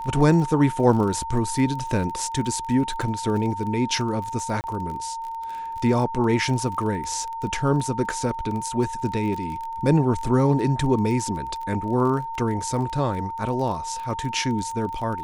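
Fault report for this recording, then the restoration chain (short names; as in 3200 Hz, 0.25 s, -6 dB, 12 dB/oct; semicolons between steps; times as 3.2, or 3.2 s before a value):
crackle 24/s -30 dBFS
tone 910 Hz -29 dBFS
4.61–4.64 gap 29 ms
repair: de-click; notch 910 Hz, Q 30; interpolate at 4.61, 29 ms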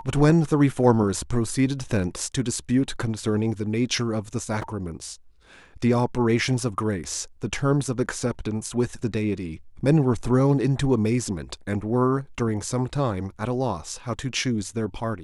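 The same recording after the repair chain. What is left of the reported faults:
none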